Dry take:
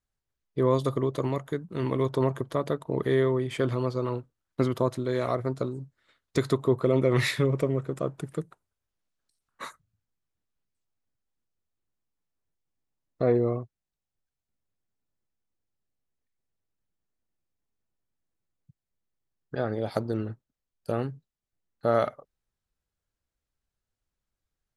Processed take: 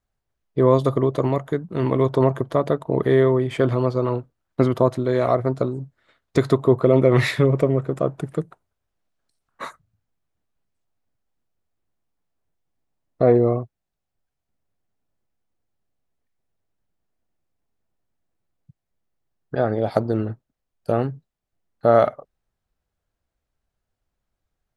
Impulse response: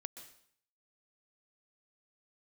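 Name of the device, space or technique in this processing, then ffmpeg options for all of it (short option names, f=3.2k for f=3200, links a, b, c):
behind a face mask: -af "equalizer=f=690:w=3.1:g=4.5,highshelf=f=3.1k:g=-8,volume=7dB"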